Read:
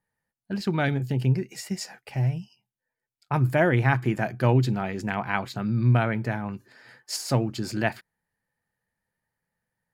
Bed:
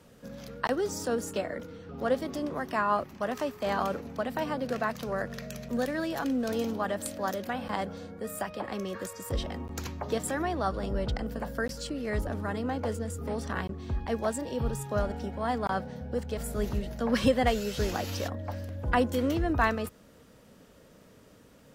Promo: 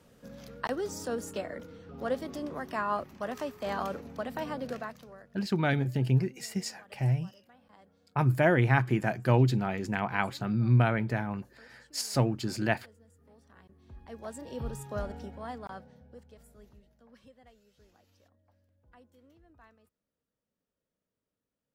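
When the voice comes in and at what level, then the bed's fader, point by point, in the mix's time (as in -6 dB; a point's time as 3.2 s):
4.85 s, -2.5 dB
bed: 4.69 s -4 dB
5.4 s -26.5 dB
13.49 s -26.5 dB
14.56 s -6 dB
15.18 s -6 dB
17.28 s -33.5 dB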